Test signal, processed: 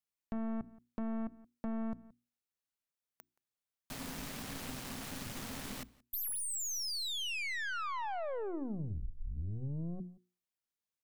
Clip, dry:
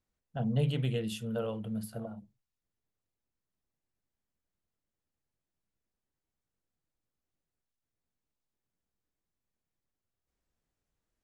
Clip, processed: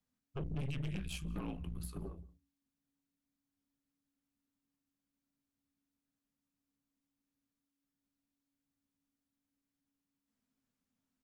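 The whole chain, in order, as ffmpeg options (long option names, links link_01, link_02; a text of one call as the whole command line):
ffmpeg -i in.wav -filter_complex "[0:a]afreqshift=-280,aeval=exprs='(tanh(44.7*val(0)+0.6)-tanh(0.6))/44.7':channel_layout=same,bandreject=frequency=60:width_type=h:width=6,bandreject=frequency=120:width_type=h:width=6,bandreject=frequency=180:width_type=h:width=6,bandreject=frequency=240:width_type=h:width=6,bandreject=frequency=300:width_type=h:width=6,bandreject=frequency=360:width_type=h:width=6,asplit=2[link_01][link_02];[link_02]adelay=174.9,volume=-24dB,highshelf=frequency=4000:gain=-3.94[link_03];[link_01][link_03]amix=inputs=2:normalize=0,acompressor=threshold=-38dB:ratio=2,volume=1dB" out.wav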